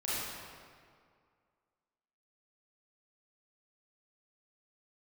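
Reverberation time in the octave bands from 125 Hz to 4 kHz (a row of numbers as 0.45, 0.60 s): 2.0, 2.1, 2.1, 2.1, 1.7, 1.4 s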